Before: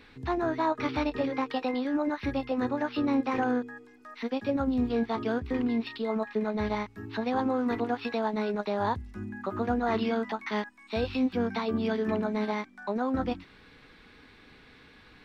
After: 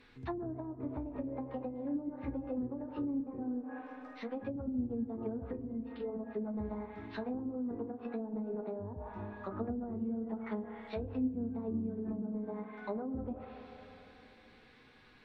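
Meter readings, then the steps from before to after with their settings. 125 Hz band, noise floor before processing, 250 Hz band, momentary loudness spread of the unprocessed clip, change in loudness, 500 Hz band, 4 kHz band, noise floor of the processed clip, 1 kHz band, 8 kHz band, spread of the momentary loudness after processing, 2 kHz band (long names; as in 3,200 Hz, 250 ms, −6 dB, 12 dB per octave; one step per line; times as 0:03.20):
−6.0 dB, −55 dBFS, −7.5 dB, 7 LU, −9.5 dB, −10.5 dB, below −15 dB, −61 dBFS, −16.0 dB, can't be measured, 8 LU, −17.0 dB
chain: spring reverb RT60 3.5 s, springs 31/51 ms, chirp 70 ms, DRR 7.5 dB
treble cut that deepens with the level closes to 310 Hz, closed at −24 dBFS
flanger 0.2 Hz, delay 7.9 ms, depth 8.2 ms, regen −43%
level −3.5 dB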